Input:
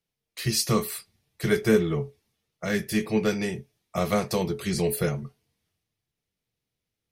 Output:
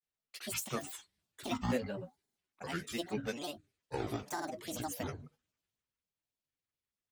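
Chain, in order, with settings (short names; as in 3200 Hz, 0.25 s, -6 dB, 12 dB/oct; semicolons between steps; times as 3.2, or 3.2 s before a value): low shelf 350 Hz -7 dB; grains, grains 20/s, spray 35 ms, pitch spread up and down by 12 st; gain -8.5 dB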